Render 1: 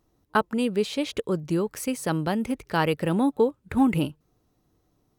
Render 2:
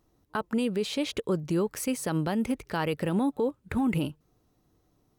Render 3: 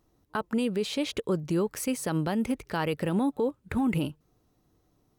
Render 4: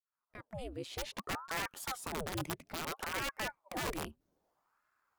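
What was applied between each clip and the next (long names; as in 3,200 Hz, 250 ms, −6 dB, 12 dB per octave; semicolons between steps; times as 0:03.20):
brickwall limiter −19 dBFS, peak gain reduction 10.5 dB
no processing that can be heard
fade in at the beginning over 1.07 s; wrap-around overflow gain 21 dB; ring modulator whose carrier an LFO sweeps 730 Hz, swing 90%, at 0.61 Hz; level −8 dB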